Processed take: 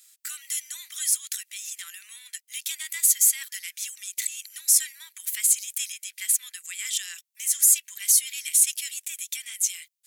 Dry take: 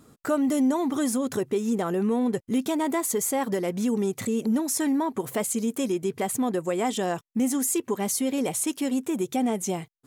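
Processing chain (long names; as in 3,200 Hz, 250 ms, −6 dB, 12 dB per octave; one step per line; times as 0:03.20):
Butterworth high-pass 1,900 Hz 36 dB per octave
high-shelf EQ 3,700 Hz +10.5 dB
level +1 dB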